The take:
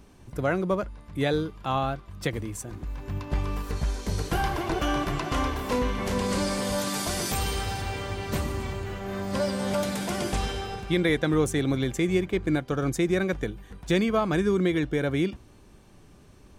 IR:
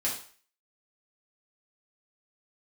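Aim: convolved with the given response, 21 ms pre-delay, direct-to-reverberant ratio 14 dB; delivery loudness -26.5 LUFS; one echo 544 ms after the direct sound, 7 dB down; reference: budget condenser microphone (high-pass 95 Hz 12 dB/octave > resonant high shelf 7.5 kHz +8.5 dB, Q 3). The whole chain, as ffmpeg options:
-filter_complex "[0:a]aecho=1:1:544:0.447,asplit=2[s0][s1];[1:a]atrim=start_sample=2205,adelay=21[s2];[s1][s2]afir=irnorm=-1:irlink=0,volume=0.0944[s3];[s0][s3]amix=inputs=2:normalize=0,highpass=95,highshelf=f=7500:t=q:w=3:g=8.5"

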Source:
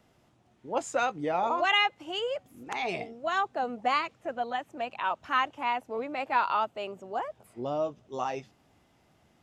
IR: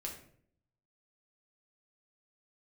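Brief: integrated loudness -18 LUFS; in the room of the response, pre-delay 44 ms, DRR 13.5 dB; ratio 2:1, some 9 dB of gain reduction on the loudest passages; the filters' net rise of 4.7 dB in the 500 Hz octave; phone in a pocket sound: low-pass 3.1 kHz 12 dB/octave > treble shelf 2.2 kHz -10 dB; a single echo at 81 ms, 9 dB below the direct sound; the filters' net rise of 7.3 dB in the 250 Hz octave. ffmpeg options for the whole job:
-filter_complex "[0:a]equalizer=f=250:t=o:g=7.5,equalizer=f=500:t=o:g=5,acompressor=threshold=0.0158:ratio=2,aecho=1:1:81:0.355,asplit=2[s0][s1];[1:a]atrim=start_sample=2205,adelay=44[s2];[s1][s2]afir=irnorm=-1:irlink=0,volume=0.251[s3];[s0][s3]amix=inputs=2:normalize=0,lowpass=3100,highshelf=f=2200:g=-10,volume=7.94"

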